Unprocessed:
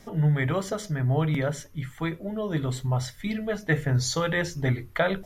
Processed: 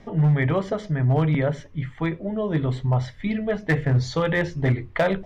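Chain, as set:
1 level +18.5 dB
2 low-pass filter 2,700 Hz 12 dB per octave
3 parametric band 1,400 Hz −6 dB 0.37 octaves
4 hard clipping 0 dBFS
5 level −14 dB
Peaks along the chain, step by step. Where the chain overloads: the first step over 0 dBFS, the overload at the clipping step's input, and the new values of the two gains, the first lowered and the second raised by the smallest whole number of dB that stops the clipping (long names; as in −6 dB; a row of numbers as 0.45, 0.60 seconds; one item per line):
+7.0, +7.0, +6.5, 0.0, −14.0 dBFS
step 1, 6.5 dB
step 1 +11.5 dB, step 5 −7 dB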